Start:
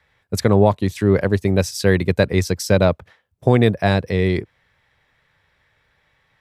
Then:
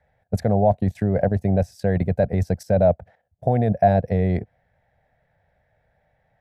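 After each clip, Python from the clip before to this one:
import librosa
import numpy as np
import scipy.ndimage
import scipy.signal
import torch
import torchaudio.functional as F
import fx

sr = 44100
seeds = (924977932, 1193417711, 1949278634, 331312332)

y = fx.high_shelf(x, sr, hz=4800.0, db=8.0)
y = fx.level_steps(y, sr, step_db=11)
y = fx.curve_eq(y, sr, hz=(210.0, 350.0, 710.0, 1100.0, 1600.0, 3200.0, 7300.0), db=(0, -10, 9, -18, -8, -21, -23))
y = y * 10.0 ** (4.5 / 20.0)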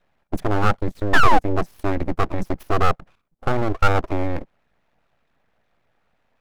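y = fx.dynamic_eq(x, sr, hz=780.0, q=1.3, threshold_db=-26.0, ratio=4.0, max_db=3)
y = fx.spec_paint(y, sr, seeds[0], shape='fall', start_s=1.13, length_s=0.26, low_hz=360.0, high_hz=930.0, level_db=-9.0)
y = np.abs(y)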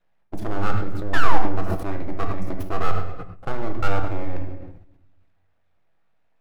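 y = fx.echo_feedback(x, sr, ms=105, feedback_pct=45, wet_db=-20)
y = fx.room_shoebox(y, sr, seeds[1], volume_m3=320.0, walls='mixed', distance_m=0.65)
y = fx.sustainer(y, sr, db_per_s=66.0)
y = y * 10.0 ** (-8.0 / 20.0)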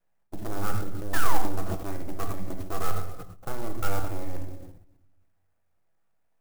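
y = fx.clock_jitter(x, sr, seeds[2], jitter_ms=0.057)
y = y * 10.0 ** (-6.0 / 20.0)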